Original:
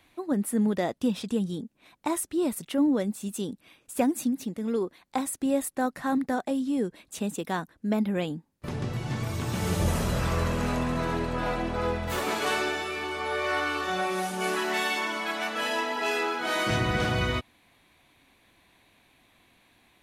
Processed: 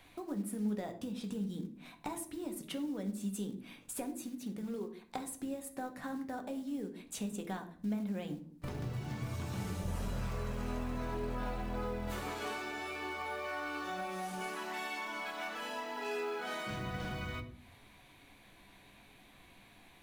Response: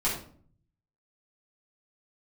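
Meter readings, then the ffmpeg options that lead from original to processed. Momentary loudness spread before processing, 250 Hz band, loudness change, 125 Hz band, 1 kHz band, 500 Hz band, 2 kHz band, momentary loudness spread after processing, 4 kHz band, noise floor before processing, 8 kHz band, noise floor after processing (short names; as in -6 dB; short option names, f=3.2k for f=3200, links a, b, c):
7 LU, -11.0 dB, -11.0 dB, -10.0 dB, -11.0 dB, -12.0 dB, -12.0 dB, 21 LU, -13.0 dB, -66 dBFS, -10.5 dB, -60 dBFS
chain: -filter_complex "[0:a]acompressor=threshold=-41dB:ratio=6,acrusher=bits=6:mode=log:mix=0:aa=0.000001,asplit=2[a][b];[1:a]atrim=start_sample=2205,lowshelf=f=330:g=5[c];[b][c]afir=irnorm=-1:irlink=0,volume=-13dB[d];[a][d]amix=inputs=2:normalize=0,volume=-1dB"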